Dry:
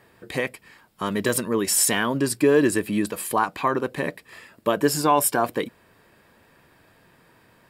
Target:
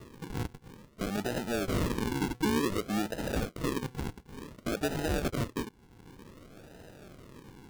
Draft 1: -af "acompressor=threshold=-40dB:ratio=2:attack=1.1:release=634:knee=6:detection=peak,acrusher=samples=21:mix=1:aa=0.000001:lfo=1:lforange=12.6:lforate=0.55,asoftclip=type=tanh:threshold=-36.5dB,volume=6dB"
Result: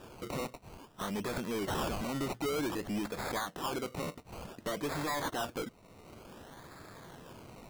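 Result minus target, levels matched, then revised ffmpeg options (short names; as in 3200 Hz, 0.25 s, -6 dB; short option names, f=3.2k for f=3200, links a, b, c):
decimation with a swept rate: distortion -14 dB; soft clip: distortion +9 dB
-af "acompressor=threshold=-40dB:ratio=2:attack=1.1:release=634:knee=6:detection=peak,acrusher=samples=56:mix=1:aa=0.000001:lfo=1:lforange=33.6:lforate=0.55,asoftclip=type=tanh:threshold=-27.5dB,volume=6dB"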